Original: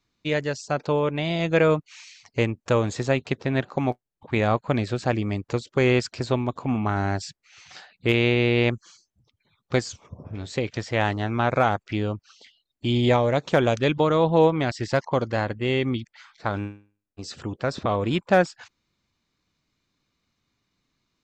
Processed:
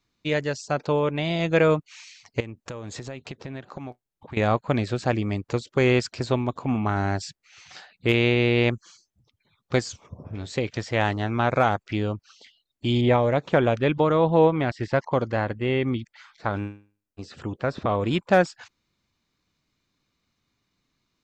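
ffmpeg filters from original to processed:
-filter_complex "[0:a]asettb=1/sr,asplit=3[s0][s1][s2];[s0]atrim=end=2.404[s3];[s1]atrim=start=2.4:end=4.37,asetpts=PTS-STARTPTS,afade=t=in:d=0.004:c=qsin,afade=t=out:st=1.966:d=0.004:c=qsin,acompressor=threshold=0.0251:ratio=8:attack=3.2:release=140:knee=1:detection=peak[s4];[s2]atrim=start=4.366[s5];[s3][s4]acrossfade=d=0.004:c1=hsin:c2=qsin[s6];[s6][s5]acrossfade=d=0.004:c1=qsin:c2=hsin,asettb=1/sr,asplit=3[s7][s8][s9];[s7]atrim=end=13.014[s10];[s8]atrim=start=13.01:end=18,asetpts=PTS-STARTPTS,afade=t=in:d=0.004:c=qsin,afade=t=out:st=4.986:d=0.004:c=qsin,acrossover=split=3200[s11][s12];[s12]acompressor=threshold=0.00251:ratio=4:attack=1:release=60[s13];[s11][s13]amix=inputs=2:normalize=0[s14];[s9]atrim=start=17.996[s15];[s10][s14]acrossfade=d=0.004:c1=hsin:c2=qsin[s16];[s16][s15]acrossfade=d=0.004:c1=qsin:c2=hsin"

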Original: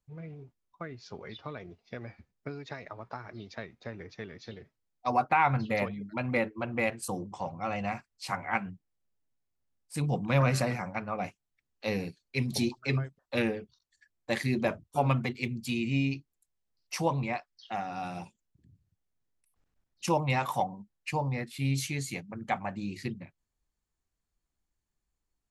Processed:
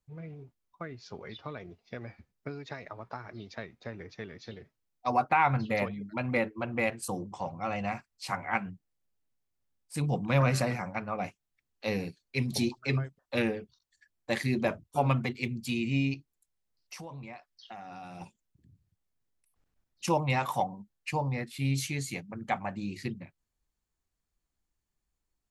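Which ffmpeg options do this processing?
-filter_complex "[0:a]asettb=1/sr,asplit=3[s0][s1][s2];[s0]atrim=end=16.144[s3];[s1]atrim=start=16.14:end=18.21,asetpts=PTS-STARTPTS,afade=t=in:d=0.004:c=qsin,afade=t=out:st=2.066:d=0.004:c=qsin,acompressor=threshold=0.00891:ratio=6:attack=3.2:release=140:knee=1:detection=peak[s4];[s2]atrim=start=18.206[s5];[s3][s4]acrossfade=d=0.004:c1=hsin:c2=qsin[s6];[s6][s5]acrossfade=d=0.004:c1=qsin:c2=hsin"

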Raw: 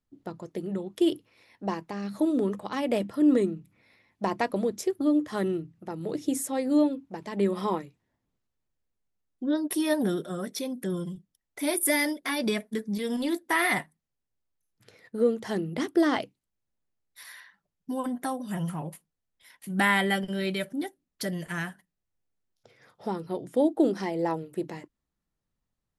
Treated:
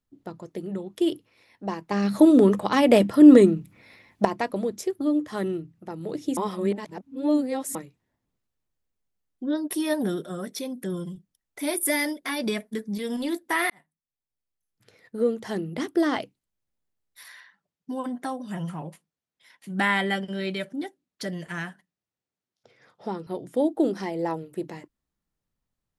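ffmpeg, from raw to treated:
-filter_complex "[0:a]asettb=1/sr,asplit=3[s0][s1][s2];[s0]atrim=end=17.284[s3];[s1]atrim=start=17.28:end=23.27,asetpts=PTS-STARTPTS,afade=t=in:d=0.004:c=qsin,afade=t=out:st=5.986:d=0.004:c=qsin,highpass=120,lowpass=7500[s4];[s2]atrim=start=23.266[s5];[s3][s4]acrossfade=d=0.004:c1=hsin:c2=qsin[s6];[s6][s5]acrossfade=d=0.004:c1=qsin:c2=hsin,asplit=6[s7][s8][s9][s10][s11][s12];[s7]atrim=end=1.912[s13];[s8]atrim=start=1.908:end=4.252,asetpts=PTS-STARTPTS,volume=3.16[s14];[s9]atrim=start=4.248:end=6.372[s15];[s10]atrim=start=6.368:end=7.752,asetpts=PTS-STARTPTS,areverse[s16];[s11]atrim=start=7.748:end=13.7,asetpts=PTS-STARTPTS,afade=t=out:st=5.948:d=0.004:c=hsin[s17];[s12]atrim=start=13.7,asetpts=PTS-STARTPTS,afade=t=in:d=1.51[s18];[s13][s14]acrossfade=d=0.004:c1=hsin:c2=hsin[s19];[s19][s15]acrossfade=d=0.004:c1=hsin:c2=hsin[s20];[s20][s16]acrossfade=d=0.004:c1=hsin:c2=hsin[s21];[s17][s18]concat=n=2:v=0:a=1[s22];[s21][s22]acrossfade=d=0.004:c1=hsin:c2=hsin"

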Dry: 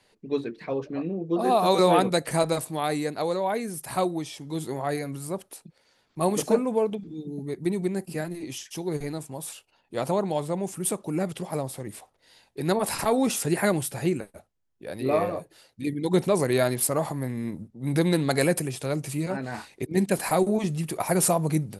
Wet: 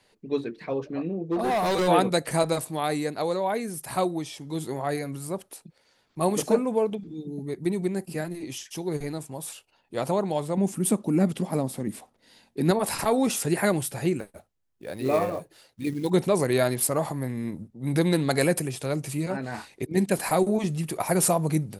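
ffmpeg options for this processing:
-filter_complex "[0:a]asplit=3[s0][s1][s2];[s0]afade=t=out:st=1.16:d=0.02[s3];[s1]asoftclip=type=hard:threshold=0.0841,afade=t=in:st=1.16:d=0.02,afade=t=out:st=1.87:d=0.02[s4];[s2]afade=t=in:st=1.87:d=0.02[s5];[s3][s4][s5]amix=inputs=3:normalize=0,asettb=1/sr,asplit=3[s6][s7][s8];[s6]atrim=end=10.574[s9];[s7]atrim=start=10.57:end=12.71,asetpts=PTS-STARTPTS,afade=t=in:d=0.004:c=qsin,afade=t=out:st=2.136:d=0.004:c=qsin,equalizer=f=230:t=o:w=0.77:g=12.5[s10];[s8]atrim=start=12.706[s11];[s9][s10]acrossfade=d=0.004:c1=hsin:c2=qsin[s12];[s12][s11]acrossfade=d=0.004:c1=qsin:c2=hsin,asettb=1/sr,asplit=3[s13][s14][s15];[s13]atrim=end=14.194[s16];[s14]atrim=start=14.19:end=16.1,asetpts=PTS-STARTPTS,afade=t=in:d=0.004:c=qsin,afade=t=out:st=1.906:d=0.004:c=qsin,acrusher=bits=6:mode=log:mix=0:aa=0.000001[s17];[s15]atrim=start=16.096[s18];[s16][s17]acrossfade=d=0.004:c1=hsin:c2=qsin[s19];[s19][s18]acrossfade=d=0.004:c1=qsin:c2=hsin"

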